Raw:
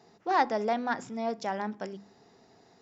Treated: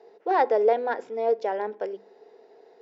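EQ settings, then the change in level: resonant high-pass 450 Hz, resonance Q 5.3; low-pass 3.4 kHz 12 dB/octave; band-stop 1.2 kHz, Q 7.3; 0.0 dB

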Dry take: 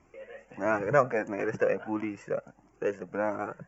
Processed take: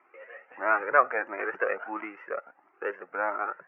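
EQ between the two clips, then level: distance through air 92 m; cabinet simulation 360–2300 Hz, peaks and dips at 370 Hz +6 dB, 830 Hz +4 dB, 1.3 kHz +9 dB, 1.9 kHz +3 dB; tilt EQ +4 dB/octave; 0.0 dB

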